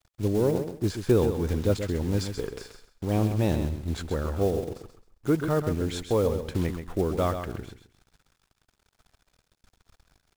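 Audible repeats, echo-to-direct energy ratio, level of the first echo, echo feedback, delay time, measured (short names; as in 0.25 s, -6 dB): 3, -8.5 dB, -8.5 dB, 22%, 0.132 s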